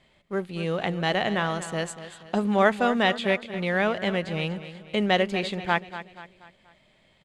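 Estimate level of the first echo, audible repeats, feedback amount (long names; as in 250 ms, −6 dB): −13.0 dB, 4, 44%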